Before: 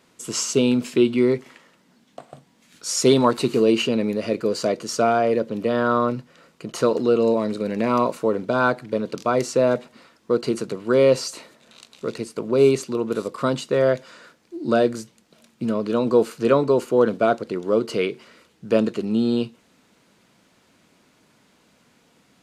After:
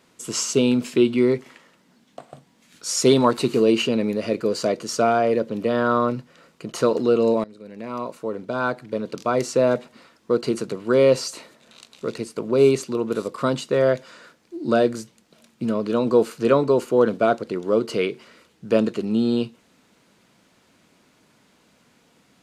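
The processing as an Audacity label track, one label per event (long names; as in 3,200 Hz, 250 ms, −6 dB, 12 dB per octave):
7.440000	9.570000	fade in, from −21.5 dB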